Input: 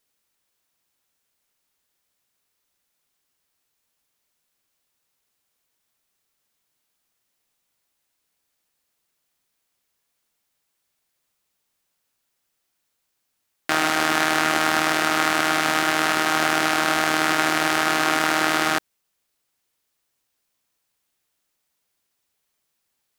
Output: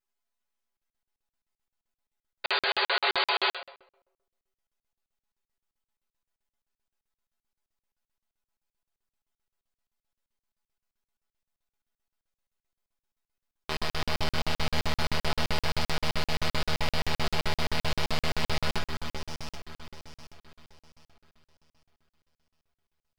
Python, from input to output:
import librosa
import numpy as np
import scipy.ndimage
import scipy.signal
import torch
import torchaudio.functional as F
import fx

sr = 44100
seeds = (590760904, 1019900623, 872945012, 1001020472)

y = fx.high_shelf_res(x, sr, hz=5200.0, db=-6.5, q=1.5)
y = fx.echo_alternate(y, sr, ms=384, hz=1200.0, feedback_pct=57, wet_db=-2)
y = np.abs(y)
y = fx.spec_paint(y, sr, seeds[0], shape='noise', start_s=2.44, length_s=1.09, low_hz=370.0, high_hz=4800.0, level_db=-18.0)
y = fx.peak_eq(y, sr, hz=910.0, db=4.5, octaves=1.6)
y = fx.comb_fb(y, sr, f0_hz=77.0, decay_s=0.16, harmonics='odd', damping=0.0, mix_pct=90)
y = fx.room_shoebox(y, sr, seeds[1], volume_m3=2900.0, walls='furnished', distance_m=1.4)
y = fx.buffer_crackle(y, sr, first_s=0.77, period_s=0.13, block=2048, kind='zero')
y = y * 10.0 ** (-2.0 / 20.0)